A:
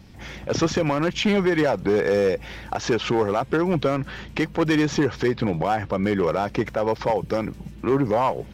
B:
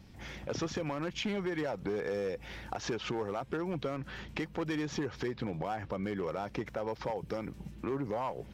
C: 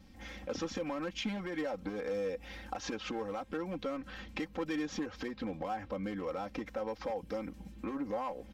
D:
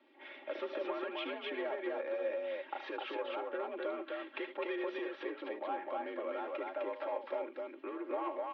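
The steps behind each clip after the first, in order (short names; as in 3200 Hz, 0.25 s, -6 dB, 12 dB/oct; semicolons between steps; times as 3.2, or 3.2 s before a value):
compressor 2.5:1, threshold -27 dBFS, peak gain reduction 7.5 dB; gain -7.5 dB
comb 3.8 ms, depth 90%; gain -4.5 dB
mistuned SSB +57 Hz 280–3400 Hz; loudspeakers at several distances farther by 26 m -11 dB, 88 m -2 dB; gain -2 dB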